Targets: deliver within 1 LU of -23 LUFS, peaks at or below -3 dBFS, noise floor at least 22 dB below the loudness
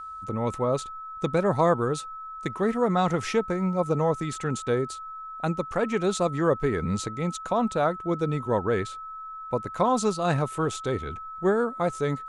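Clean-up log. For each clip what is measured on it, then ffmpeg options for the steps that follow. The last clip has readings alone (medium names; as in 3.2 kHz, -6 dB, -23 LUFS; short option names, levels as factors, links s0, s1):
steady tone 1.3 kHz; tone level -36 dBFS; loudness -26.5 LUFS; peak level -10.0 dBFS; loudness target -23.0 LUFS
-> -af "bandreject=f=1300:w=30"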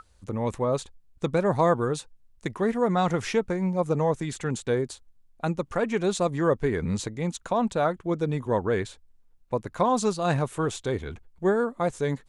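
steady tone not found; loudness -27.0 LUFS; peak level -10.5 dBFS; loudness target -23.0 LUFS
-> -af "volume=1.58"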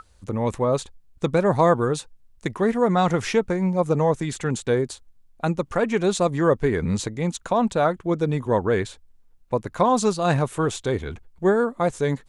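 loudness -23.0 LUFS; peak level -6.5 dBFS; noise floor -56 dBFS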